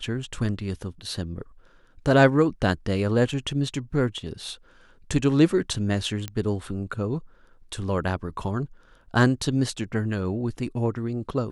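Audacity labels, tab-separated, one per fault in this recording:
6.280000	6.280000	click −16 dBFS

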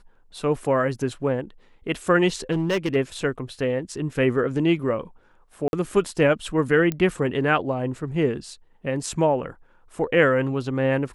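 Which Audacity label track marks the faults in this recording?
2.510000	2.960000	clipping −19 dBFS
5.680000	5.730000	drop-out 51 ms
6.920000	6.920000	click −13 dBFS

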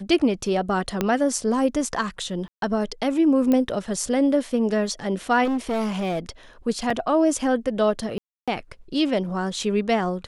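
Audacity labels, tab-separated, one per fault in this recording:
1.010000	1.010000	click −8 dBFS
2.480000	2.620000	drop-out 142 ms
3.520000	3.520000	click −11 dBFS
5.440000	6.190000	clipping −21 dBFS
6.900000	6.900000	drop-out 3.9 ms
8.180000	8.480000	drop-out 296 ms

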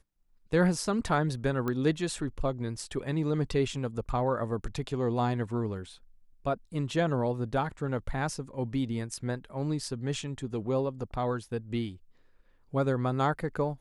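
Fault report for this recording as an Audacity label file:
1.680000	1.680000	click −19 dBFS

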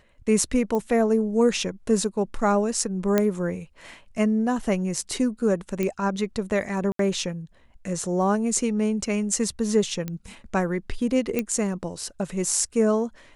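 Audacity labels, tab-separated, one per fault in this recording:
0.750000	0.750000	click −16 dBFS
3.180000	3.180000	click −7 dBFS
5.830000	5.830000	click −13 dBFS
6.920000	6.990000	drop-out 73 ms
10.080000	10.080000	click −17 dBFS
11.390000	11.390000	click −11 dBFS

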